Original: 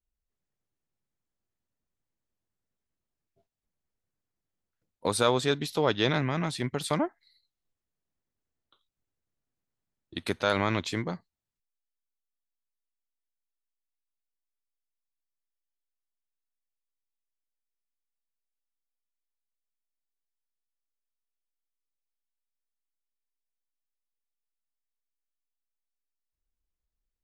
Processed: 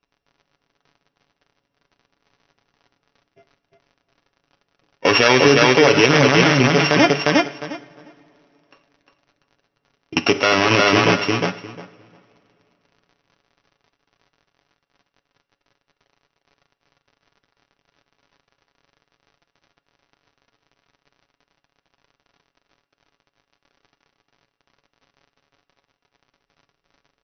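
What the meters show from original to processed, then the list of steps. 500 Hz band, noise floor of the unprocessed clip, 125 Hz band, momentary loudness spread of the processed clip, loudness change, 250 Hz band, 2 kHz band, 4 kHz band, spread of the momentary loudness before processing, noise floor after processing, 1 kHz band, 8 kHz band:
+13.5 dB, below −85 dBFS, +11.5 dB, 12 LU, +13.5 dB, +13.5 dB, +18.0 dB, +15.0 dB, 10 LU, −79 dBFS, +13.5 dB, +10.5 dB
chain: samples sorted by size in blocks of 16 samples
high-pass filter 390 Hz 6 dB per octave
high-shelf EQ 3,700 Hz −8 dB
surface crackle 35 per second −57 dBFS
linear-phase brick-wall low-pass 6,200 Hz
comb filter 7.1 ms, depth 53%
repeating echo 354 ms, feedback 17%, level −5 dB
coupled-rooms reverb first 0.47 s, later 3 s, from −19 dB, DRR 12 dB
boost into a limiter +21.5 dB
one half of a high-frequency compander decoder only
level −1 dB

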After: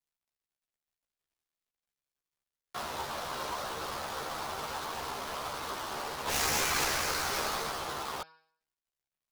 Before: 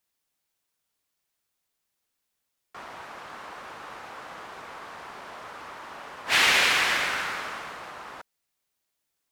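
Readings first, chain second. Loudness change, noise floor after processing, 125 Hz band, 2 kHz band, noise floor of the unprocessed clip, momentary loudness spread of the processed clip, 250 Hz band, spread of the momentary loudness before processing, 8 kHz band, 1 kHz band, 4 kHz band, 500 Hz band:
−11.0 dB, below −85 dBFS, +5.0 dB, −10.0 dB, −81 dBFS, 10 LU, +1.0 dB, 22 LU, +0.5 dB, −1.0 dB, −7.0 dB, +1.0 dB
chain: gap after every zero crossing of 0.16 ms
hum removal 159.8 Hz, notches 34
in parallel at +2 dB: compressor whose output falls as the input rises −37 dBFS, ratio −1
on the sum: multi-voice chorus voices 6, 0.61 Hz, delay 14 ms, depth 1.5 ms
dynamic equaliser 1,800 Hz, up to −5 dB, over −44 dBFS, Q 2.1

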